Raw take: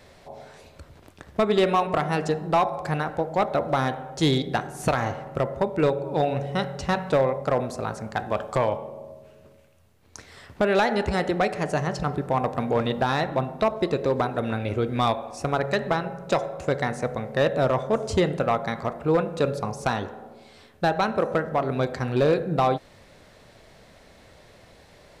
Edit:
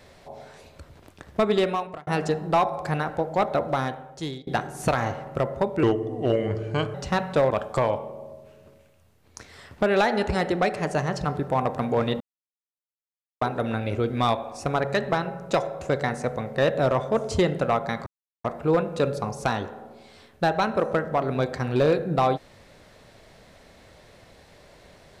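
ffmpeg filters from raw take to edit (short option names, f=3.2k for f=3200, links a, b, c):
-filter_complex "[0:a]asplit=9[a][b][c][d][e][f][g][h][i];[a]atrim=end=2.07,asetpts=PTS-STARTPTS,afade=t=out:st=1.5:d=0.57[j];[b]atrim=start=2.07:end=4.47,asetpts=PTS-STARTPTS,afade=t=in:d=0.004:c=hsin,afade=t=out:st=1.5:d=0.9:silence=0.0749894[k];[c]atrim=start=4.47:end=5.834,asetpts=PTS-STARTPTS,afade=t=in:d=0.004:c=hsin:silence=0.0749894[l];[d]atrim=start=5.83:end=6.71,asetpts=PTS-STARTPTS,asetrate=34839,aresample=44100,atrim=end_sample=49124,asetpts=PTS-STARTPTS[m];[e]atrim=start=6.706:end=7.272[n];[f]atrim=start=8.288:end=12.99,asetpts=PTS-STARTPTS,afade=t=out:st=4.698:d=0.004:c=hsin[o];[g]atrim=start=12.99:end=14.2,asetpts=PTS-STARTPTS,volume=0[p];[h]atrim=start=14.2:end=18.85,asetpts=PTS-STARTPTS,afade=t=in:d=0.004:c=hsin,afade=t=out:st=4.646:d=0.004:c=hsin,apad=pad_dur=0.38[q];[i]atrim=start=18.85,asetpts=PTS-STARTPTS,afade=t=in:d=0.004:c=hsin[r];[j][k][l]concat=n=3:v=0:a=1[s];[s][m]acrossfade=d=0.004:c1=hsin:c2=hsin[t];[t][n]acrossfade=d=0.004:c1=hsin:c2=hsin[u];[o][p][q][r]concat=n=4:v=0:a=1[v];[u][v]acrossfade=d=0.004:c1=hsin:c2=hsin"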